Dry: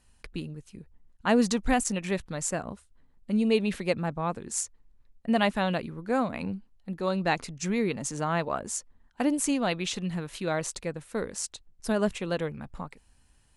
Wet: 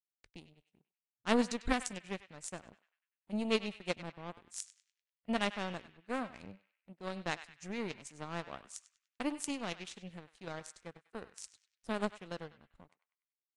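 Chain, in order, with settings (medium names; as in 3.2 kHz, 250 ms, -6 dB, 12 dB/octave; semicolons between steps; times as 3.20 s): peaking EQ 960 Hz -6 dB 0.86 oct; power-law waveshaper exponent 2; on a send: band-passed feedback delay 98 ms, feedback 47%, band-pass 2.3 kHz, level -12 dB; on the sum: resampled via 22.05 kHz; Vorbis 64 kbps 44.1 kHz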